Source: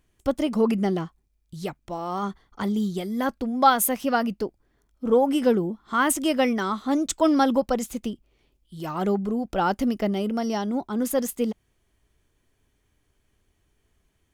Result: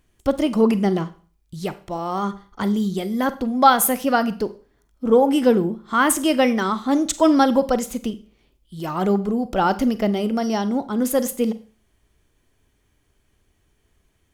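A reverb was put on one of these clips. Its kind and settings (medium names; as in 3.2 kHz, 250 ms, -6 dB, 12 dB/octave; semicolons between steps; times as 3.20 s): Schroeder reverb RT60 0.41 s, combs from 32 ms, DRR 13.5 dB; trim +4 dB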